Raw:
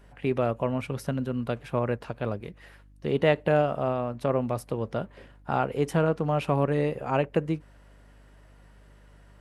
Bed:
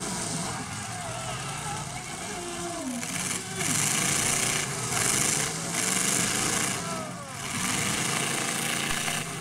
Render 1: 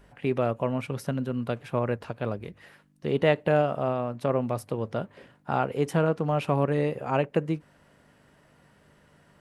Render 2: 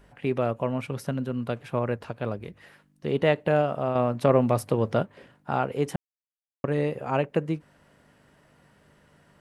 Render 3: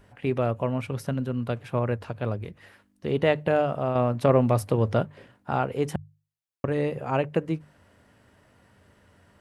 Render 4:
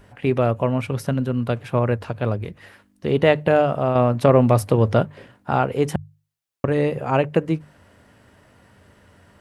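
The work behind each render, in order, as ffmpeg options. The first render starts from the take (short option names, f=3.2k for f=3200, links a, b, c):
-af "bandreject=f=50:t=h:w=4,bandreject=f=100:t=h:w=4"
-filter_complex "[0:a]asettb=1/sr,asplit=3[a][b][c];[a]atrim=end=3.954[d];[b]atrim=start=3.95:end=5.03,asetpts=PTS-STARTPTS,afade=t=in:d=0.004:c=qsin,afade=t=out:st=1.076:d=0.004:c=qsin,acontrast=57[e];[c]atrim=start=5.026[f];[d][e]acrossfade=d=0.004:c1=hsin:c2=qsin[g];[g][f]acrossfade=d=0.004:c1=qsin:c2=hsin,asplit=3[h][i][j];[h]atrim=end=5.96,asetpts=PTS-STARTPTS,afade=t=out:st=5.956:d=0.004:c=hsin[k];[i]atrim=start=5.96:end=6.64,asetpts=PTS-STARTPTS,volume=0[l];[j]atrim=start=6.64,asetpts=PTS-STARTPTS,afade=t=in:d=0.004:c=hsin[m];[k][l][m]concat=n=3:v=0:a=1"
-af "equalizer=f=94:w=2.9:g=11.5,bandreject=f=50:t=h:w=6,bandreject=f=100:t=h:w=6,bandreject=f=150:t=h:w=6"
-af "volume=6dB,alimiter=limit=-3dB:level=0:latency=1"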